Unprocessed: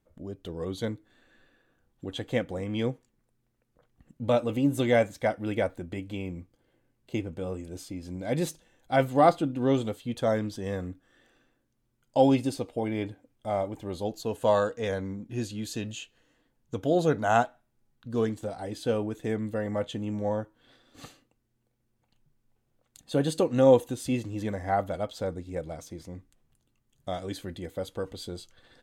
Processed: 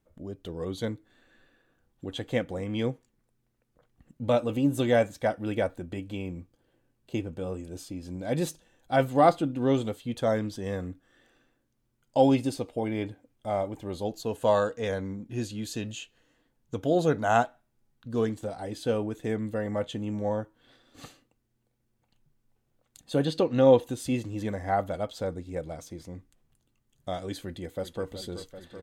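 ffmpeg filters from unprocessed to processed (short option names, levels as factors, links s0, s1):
-filter_complex "[0:a]asettb=1/sr,asplit=3[s0][s1][s2];[s0]atrim=end=4.404[s3];[s1]atrim=start=4.4:end=9.09,asetpts=PTS-STARTPTS,afade=t=in:d=0.004:c=qsin,afade=t=out:st=4.686:d=0.004:c=qsin,bandreject=f=2100:w=12[s4];[s2]atrim=start=9.086[s5];[s3][s4]acrossfade=d=0.004:c1=hsin:c2=qsin[s6];[s6][s5]acrossfade=d=0.004:c1=qsin:c2=hsin,asettb=1/sr,asplit=3[s7][s8][s9];[s7]atrim=end=23.254[s10];[s8]atrim=start=23.25:end=23.84,asetpts=PTS-STARTPTS,afade=t=in:d=0.004:c=qsin,afade=t=out:st=0.586:d=0.004:c=qsin,highshelf=f=5900:t=q:w=1.5:g=-9.5[s11];[s9]atrim=start=23.836[s12];[s10][s11]acrossfade=d=0.004:c1=hsin:c2=qsin[s13];[s13][s12]acrossfade=d=0.004:c1=qsin:c2=hsin,asplit=2[s14][s15];[s15]afade=t=in:st=27.41:d=0.01,afade=t=out:st=28.1:d=0.01,aecho=0:1:380|760|1140|1520|1900|2280|2660|3040|3420|3800|4180|4560:0.281838|0.239563|0.203628|0.173084|0.147121|0.125053|0.106295|0.0903509|0.0767983|0.0652785|0.0554867|0.0471637[s16];[s14][s16]amix=inputs=2:normalize=0"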